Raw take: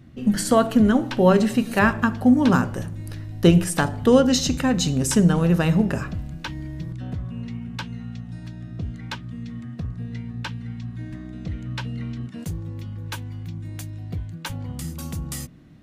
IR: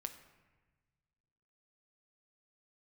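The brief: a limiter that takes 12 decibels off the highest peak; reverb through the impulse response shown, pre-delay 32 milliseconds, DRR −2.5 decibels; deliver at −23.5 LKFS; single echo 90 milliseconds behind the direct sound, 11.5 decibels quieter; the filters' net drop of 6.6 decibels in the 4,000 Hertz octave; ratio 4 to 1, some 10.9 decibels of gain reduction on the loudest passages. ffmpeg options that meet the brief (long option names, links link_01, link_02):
-filter_complex "[0:a]equalizer=frequency=4000:width_type=o:gain=-9,acompressor=threshold=-24dB:ratio=4,alimiter=limit=-24dB:level=0:latency=1,aecho=1:1:90:0.266,asplit=2[link_01][link_02];[1:a]atrim=start_sample=2205,adelay=32[link_03];[link_02][link_03]afir=irnorm=-1:irlink=0,volume=5dB[link_04];[link_01][link_04]amix=inputs=2:normalize=0,volume=5dB"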